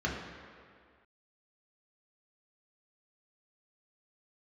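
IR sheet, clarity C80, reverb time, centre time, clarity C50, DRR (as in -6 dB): 4.5 dB, 2.0 s, 73 ms, 2.5 dB, -3.5 dB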